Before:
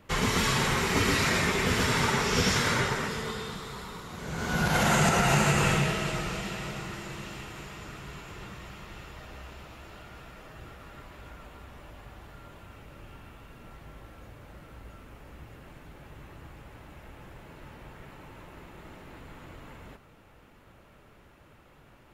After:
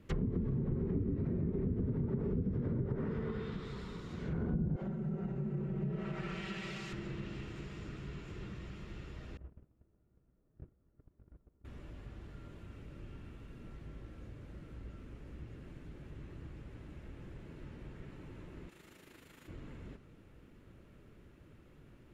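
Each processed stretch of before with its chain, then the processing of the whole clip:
0:04.76–0:06.93: spectral tilt +3 dB per octave + comb filter 5.2 ms, depth 71% + multiband delay without the direct sound highs, lows 50 ms, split 290 Hz
0:09.37–0:11.65: Bessel low-pass filter 700 Hz + noise gate −45 dBFS, range −23 dB
0:18.69–0:19.48: spectral tilt +3.5 dB per octave + amplitude modulation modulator 26 Hz, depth 45%
whole clip: drawn EQ curve 360 Hz 0 dB, 810 Hz −14 dB, 1,700 Hz −9 dB; downward compressor 8 to 1, threshold −29 dBFS; treble cut that deepens with the level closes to 340 Hz, closed at −29 dBFS

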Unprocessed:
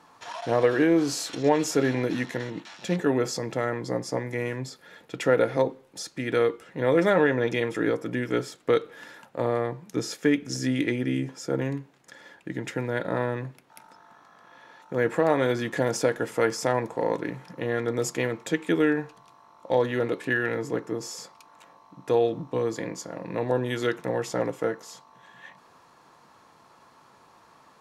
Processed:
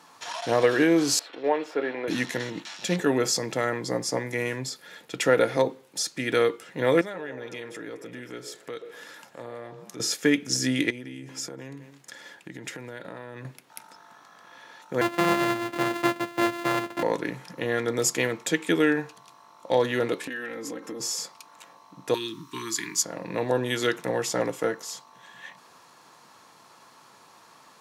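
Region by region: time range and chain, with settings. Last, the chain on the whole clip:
0:01.19–0:02.08: mu-law and A-law mismatch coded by A + Chebyshev high-pass filter 470 Hz + high-frequency loss of the air 460 metres
0:07.01–0:10.00: downward compressor 2 to 1, threshold −47 dBFS + echo through a band-pass that steps 128 ms, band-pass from 480 Hz, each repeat 0.7 octaves, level −6 dB
0:10.90–0:13.45: single-tap delay 204 ms −22.5 dB + downward compressor, threshold −36 dBFS
0:15.01–0:17.03: samples sorted by size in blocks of 128 samples + three-way crossover with the lows and the highs turned down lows −15 dB, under 150 Hz, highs −16 dB, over 2,800 Hz + notch comb filter 220 Hz
0:20.27–0:21.00: comb filter 3.8 ms, depth 80% + downward compressor 12 to 1, threshold −32 dBFS
0:22.14–0:23.03: Chebyshev band-stop filter 410–930 Hz, order 5 + spectral tilt +2.5 dB per octave
whole clip: high-pass filter 110 Hz; high-shelf EQ 2,400 Hz +9.5 dB

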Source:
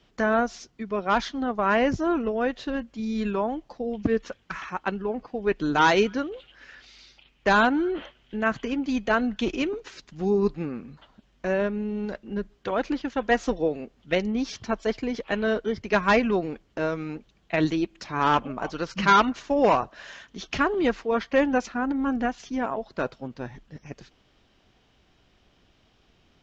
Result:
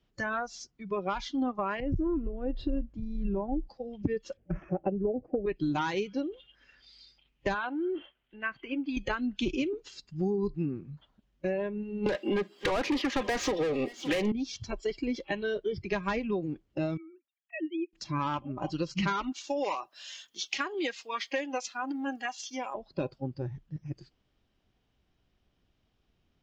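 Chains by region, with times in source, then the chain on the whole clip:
0:01.80–0:03.69: spectral tilt −3 dB per octave + downward compressor 8 to 1, threshold −25 dBFS
0:04.37–0:05.46: moving average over 11 samples + low shelf with overshoot 780 Hz +7.5 dB, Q 3
0:07.54–0:08.97: low-pass filter 2,900 Hz + low-shelf EQ 340 Hz −11.5 dB
0:12.06–0:14.32: high-pass filter 210 Hz 24 dB per octave + mid-hump overdrive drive 34 dB, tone 3,400 Hz, clips at −8 dBFS + single-tap delay 567 ms −20.5 dB
0:16.97–0:17.93: three sine waves on the formant tracks + high-pass filter 1,400 Hz 6 dB per octave
0:19.32–0:22.75: high-pass filter 390 Hz 6 dB per octave + spectral tilt +2.5 dB per octave
whole clip: noise reduction from a noise print of the clip's start 15 dB; downward compressor 10 to 1, threshold −29 dBFS; low-shelf EQ 250 Hz +7 dB

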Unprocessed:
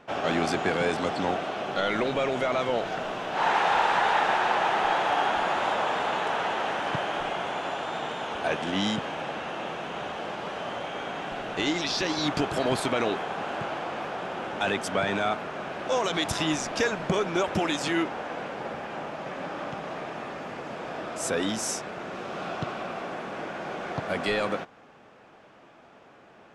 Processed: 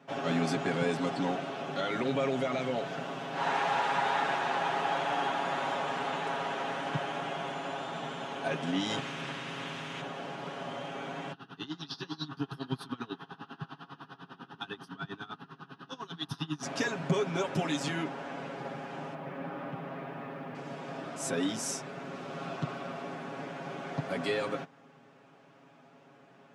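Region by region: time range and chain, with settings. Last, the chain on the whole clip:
0:08.89–0:10.00: ceiling on every frequency bin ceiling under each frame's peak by 15 dB + double-tracking delay 37 ms −12.5 dB
0:11.32–0:16.63: phaser with its sweep stopped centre 2,200 Hz, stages 6 + tremolo with a sine in dB 10 Hz, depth 22 dB
0:19.14–0:20.55: low-pass filter 2,500 Hz + bit-depth reduction 12 bits, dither none
whole clip: high-pass filter 150 Hz 24 dB per octave; bass and treble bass +11 dB, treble +2 dB; comb filter 7.3 ms, depth 79%; level −8.5 dB

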